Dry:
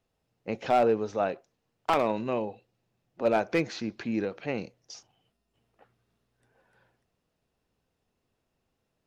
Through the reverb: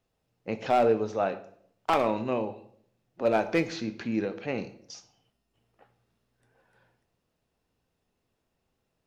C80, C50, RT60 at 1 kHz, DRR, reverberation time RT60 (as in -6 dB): 17.0 dB, 14.0 dB, 0.55 s, 9.5 dB, 0.65 s